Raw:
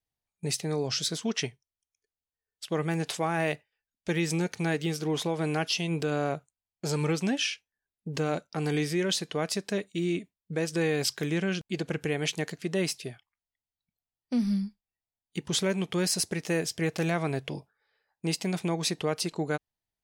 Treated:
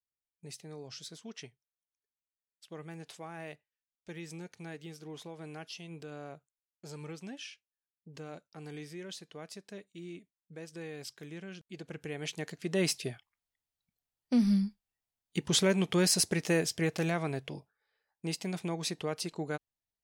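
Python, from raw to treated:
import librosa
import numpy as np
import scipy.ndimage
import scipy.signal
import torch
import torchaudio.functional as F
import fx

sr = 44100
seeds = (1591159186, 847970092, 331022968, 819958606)

y = fx.gain(x, sr, db=fx.line((11.51, -16.0), (12.56, -5.5), (12.91, 1.0), (16.4, 1.0), (17.53, -6.0)))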